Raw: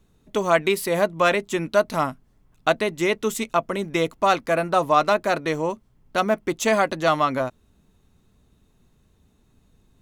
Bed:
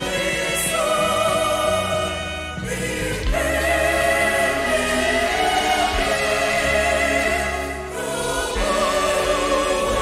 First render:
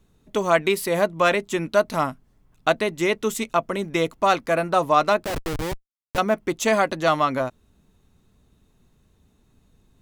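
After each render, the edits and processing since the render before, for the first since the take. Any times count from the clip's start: 5.24–6.18 s: Schmitt trigger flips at -25 dBFS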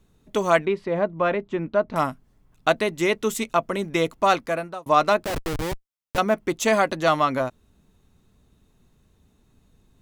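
0.65–1.96 s: tape spacing loss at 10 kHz 38 dB; 4.34–4.86 s: fade out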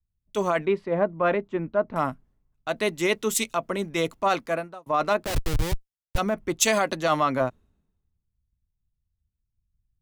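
peak limiter -14.5 dBFS, peak gain reduction 10 dB; three bands expanded up and down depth 100%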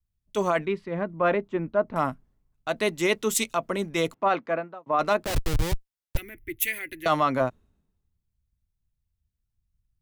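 0.64–1.14 s: peaking EQ 640 Hz -8.5 dB 1.6 oct; 4.14–4.99 s: band-pass 160–2400 Hz; 6.17–7.06 s: FFT filter 110 Hz 0 dB, 190 Hz -26 dB, 330 Hz -5 dB, 570 Hz -29 dB, 1.2 kHz -29 dB, 2 kHz +2 dB, 4.6 kHz -19 dB, 7.2 kHz -18 dB, 12 kHz +10 dB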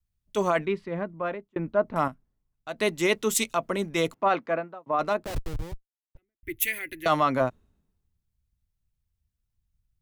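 0.85–1.56 s: fade out linear; 2.08–2.79 s: gain -7.5 dB; 4.46–6.43 s: studio fade out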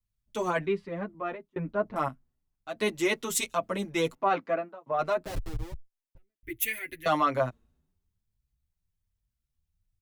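endless flanger 7.1 ms +1.1 Hz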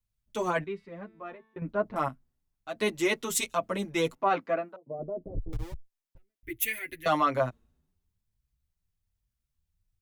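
0.64–1.62 s: feedback comb 220 Hz, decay 1.3 s; 4.76–5.53 s: inverse Chebyshev low-pass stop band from 2.3 kHz, stop band 70 dB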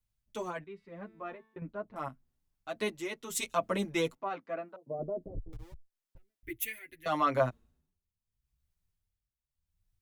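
tremolo 0.8 Hz, depth 75%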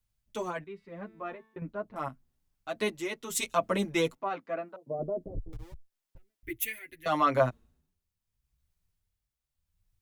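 trim +3 dB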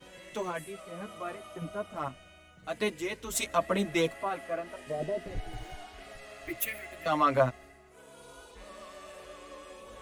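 add bed -28 dB

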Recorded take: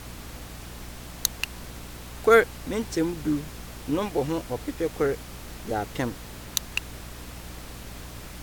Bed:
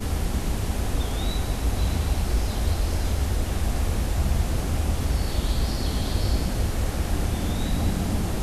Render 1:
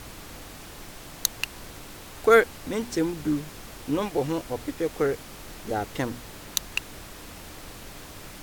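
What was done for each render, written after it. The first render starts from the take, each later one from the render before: de-hum 60 Hz, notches 4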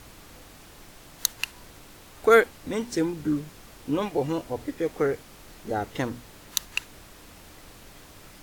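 noise print and reduce 6 dB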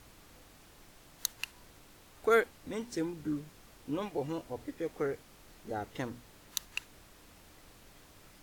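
trim -9 dB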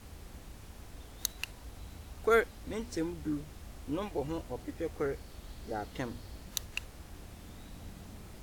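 add bed -24 dB

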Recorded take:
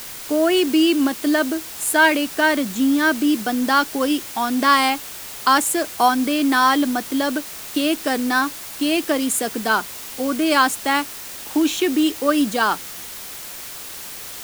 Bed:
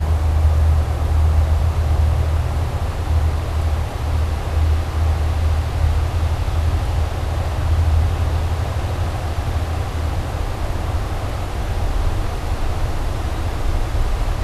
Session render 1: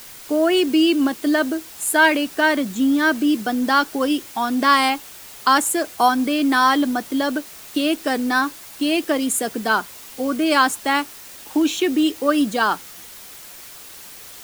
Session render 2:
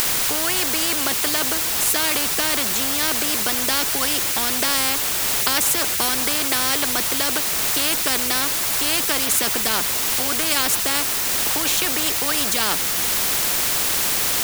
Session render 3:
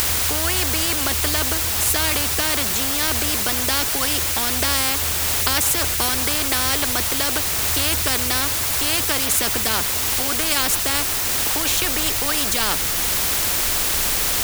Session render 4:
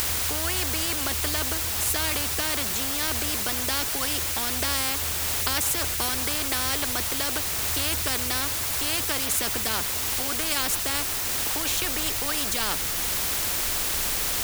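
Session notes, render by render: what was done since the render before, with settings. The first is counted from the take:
noise reduction 6 dB, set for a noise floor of -34 dBFS
upward compressor, threshold -31 dBFS; spectrum-flattening compressor 4:1
add bed -15 dB
trim -6 dB

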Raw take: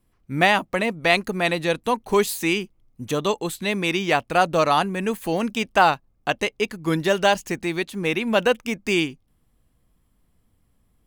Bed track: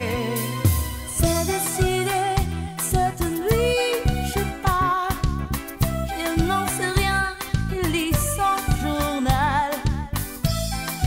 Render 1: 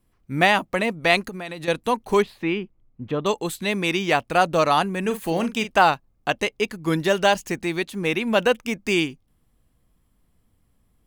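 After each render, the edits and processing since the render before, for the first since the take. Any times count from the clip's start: 1.21–1.68 s: compression 8:1, threshold -29 dBFS; 2.22–3.26 s: distance through air 420 m; 5.01–5.79 s: doubling 42 ms -10 dB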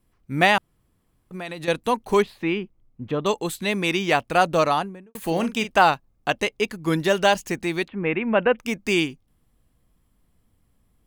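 0.58–1.31 s: room tone; 4.57–5.15 s: studio fade out; 7.88–8.59 s: steep low-pass 2.6 kHz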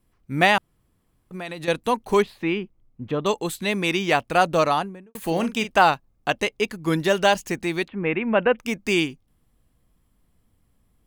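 no audible change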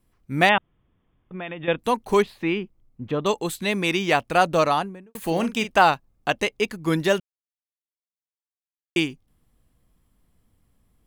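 0.49–1.79 s: brick-wall FIR low-pass 3.7 kHz; 7.20–8.96 s: mute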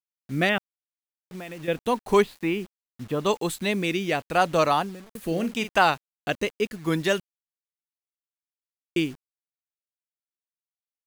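rotary cabinet horn 0.8 Hz; bit crusher 8-bit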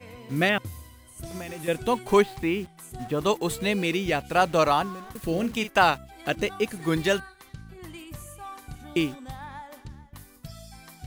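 add bed track -19.5 dB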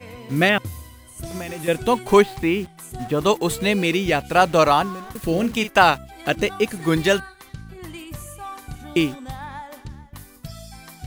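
trim +5.5 dB; peak limiter -1 dBFS, peak gain reduction 1 dB

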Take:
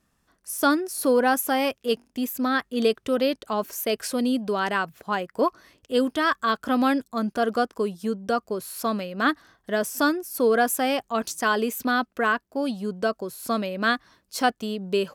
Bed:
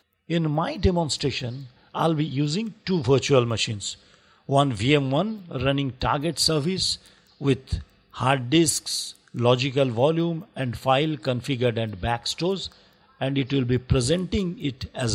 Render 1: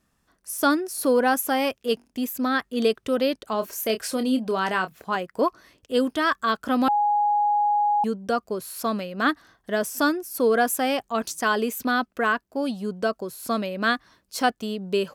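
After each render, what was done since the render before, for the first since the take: 3.52–5.16 s: doubling 27 ms -9.5 dB; 6.88–8.04 s: bleep 829 Hz -18 dBFS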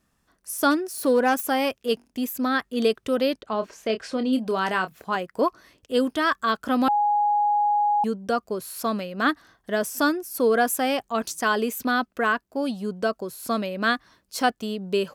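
0.71–1.44 s: self-modulated delay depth 0.054 ms; 3.41–4.33 s: distance through air 130 m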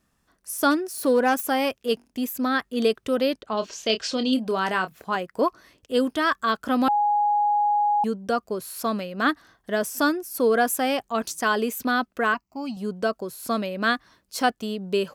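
3.57–4.34 s: high-order bell 4.5 kHz +11 dB; 12.34–12.77 s: static phaser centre 2.4 kHz, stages 8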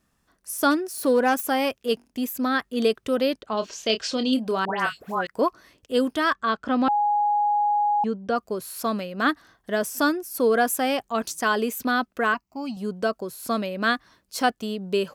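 4.65–5.27 s: phase dispersion highs, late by 139 ms, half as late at 1.6 kHz; 6.33–8.36 s: distance through air 120 m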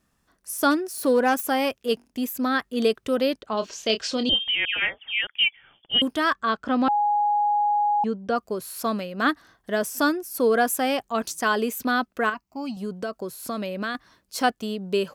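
4.29–6.02 s: frequency inversion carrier 3.4 kHz; 12.29–13.95 s: compression, threshold -25 dBFS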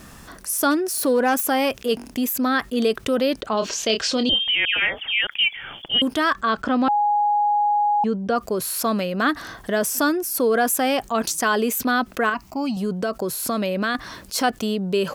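level flattener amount 50%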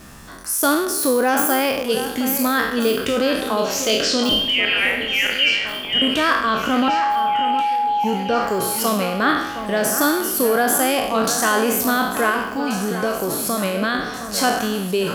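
spectral sustain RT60 0.80 s; on a send: echo whose repeats swap between lows and highs 716 ms, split 2.5 kHz, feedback 73%, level -10 dB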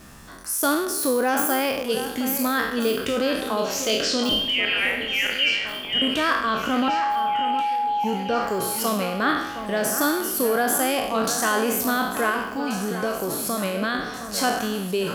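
trim -4 dB

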